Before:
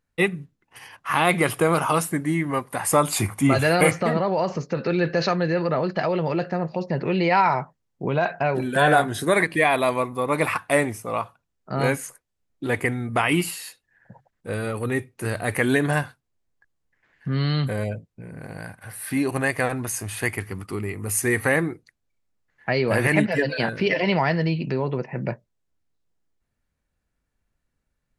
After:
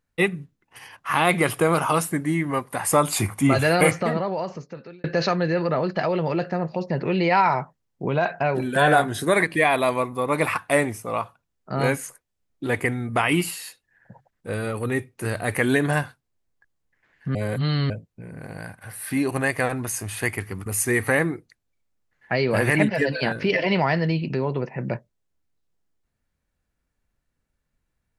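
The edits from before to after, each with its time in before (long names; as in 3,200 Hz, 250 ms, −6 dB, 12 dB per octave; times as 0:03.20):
0:03.92–0:05.04: fade out
0:17.35–0:17.90: reverse
0:20.66–0:21.03: remove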